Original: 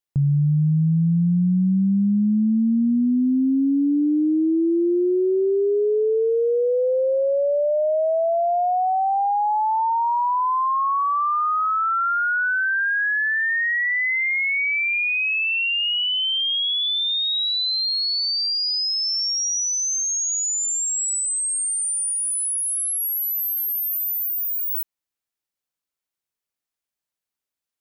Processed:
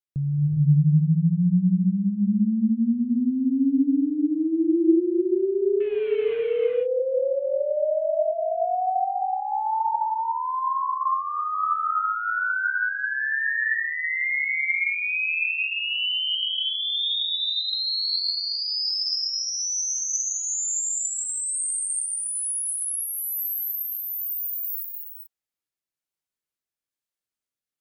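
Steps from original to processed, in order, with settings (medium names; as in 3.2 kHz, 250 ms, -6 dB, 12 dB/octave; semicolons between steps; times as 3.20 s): 5.80–6.43 s: CVSD coder 16 kbps; rotary cabinet horn 1.1 Hz; gated-style reverb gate 450 ms rising, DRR 0 dB; trim -4 dB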